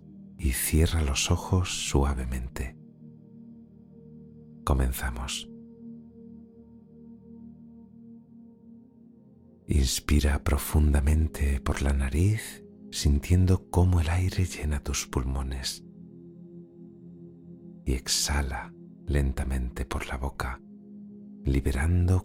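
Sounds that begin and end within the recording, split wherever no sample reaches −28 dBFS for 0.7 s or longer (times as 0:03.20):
0:04.67–0:05.40
0:09.70–0:15.73
0:17.88–0:20.54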